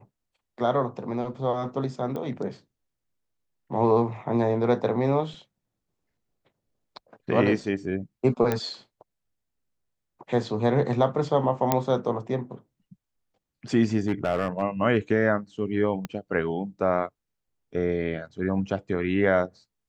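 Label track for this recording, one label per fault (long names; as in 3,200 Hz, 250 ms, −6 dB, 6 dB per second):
2.160000	2.160000	click −22 dBFS
8.520000	8.520000	click −11 dBFS
11.720000	11.720000	click −6 dBFS
13.990000	14.620000	clipping −17.5 dBFS
16.050000	16.050000	click −17 dBFS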